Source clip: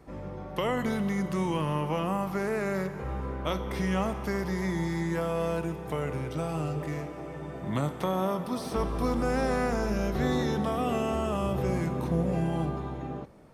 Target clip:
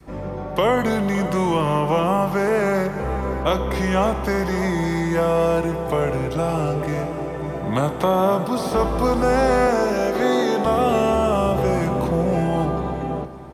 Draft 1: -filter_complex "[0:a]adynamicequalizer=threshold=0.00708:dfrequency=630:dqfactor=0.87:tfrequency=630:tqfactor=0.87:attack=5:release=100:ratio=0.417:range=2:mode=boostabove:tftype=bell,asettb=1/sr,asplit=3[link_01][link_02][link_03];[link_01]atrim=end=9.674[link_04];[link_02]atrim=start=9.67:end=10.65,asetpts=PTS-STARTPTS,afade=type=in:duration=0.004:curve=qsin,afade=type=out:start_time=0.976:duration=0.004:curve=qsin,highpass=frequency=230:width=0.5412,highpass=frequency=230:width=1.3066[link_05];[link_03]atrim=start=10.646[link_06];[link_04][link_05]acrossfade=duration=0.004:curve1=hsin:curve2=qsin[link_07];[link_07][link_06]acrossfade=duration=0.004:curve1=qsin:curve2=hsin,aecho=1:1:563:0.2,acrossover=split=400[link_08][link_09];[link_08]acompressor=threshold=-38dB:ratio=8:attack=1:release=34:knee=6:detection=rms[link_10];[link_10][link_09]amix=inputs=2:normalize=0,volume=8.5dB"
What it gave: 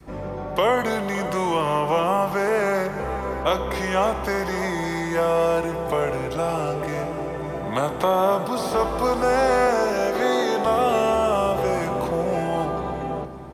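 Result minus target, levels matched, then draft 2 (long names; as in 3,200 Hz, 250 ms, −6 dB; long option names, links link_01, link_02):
downward compressor: peak gain reduction +10 dB
-filter_complex "[0:a]adynamicequalizer=threshold=0.00708:dfrequency=630:dqfactor=0.87:tfrequency=630:tqfactor=0.87:attack=5:release=100:ratio=0.417:range=2:mode=boostabove:tftype=bell,asettb=1/sr,asplit=3[link_01][link_02][link_03];[link_01]atrim=end=9.674[link_04];[link_02]atrim=start=9.67:end=10.65,asetpts=PTS-STARTPTS,afade=type=in:duration=0.004:curve=qsin,afade=type=out:start_time=0.976:duration=0.004:curve=qsin,highpass=frequency=230:width=0.5412,highpass=frequency=230:width=1.3066[link_05];[link_03]atrim=start=10.646[link_06];[link_04][link_05]acrossfade=duration=0.004:curve1=hsin:curve2=qsin[link_07];[link_07][link_06]acrossfade=duration=0.004:curve1=qsin:curve2=hsin,aecho=1:1:563:0.2,acrossover=split=400[link_08][link_09];[link_08]acompressor=threshold=-26.5dB:ratio=8:attack=1:release=34:knee=6:detection=rms[link_10];[link_10][link_09]amix=inputs=2:normalize=0,volume=8.5dB"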